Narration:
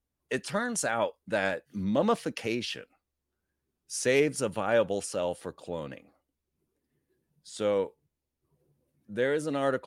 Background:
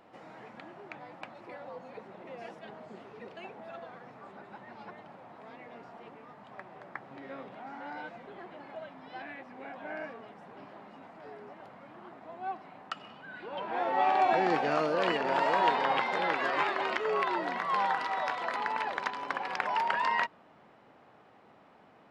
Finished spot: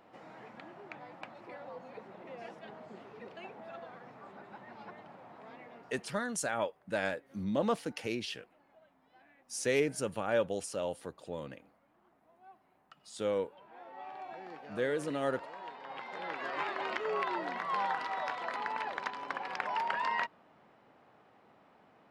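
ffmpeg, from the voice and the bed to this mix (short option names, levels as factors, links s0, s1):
-filter_complex "[0:a]adelay=5600,volume=0.562[s0];[1:a]volume=5.01,afade=t=out:st=5.56:d=0.73:silence=0.125893,afade=t=in:st=15.81:d=1.17:silence=0.158489[s1];[s0][s1]amix=inputs=2:normalize=0"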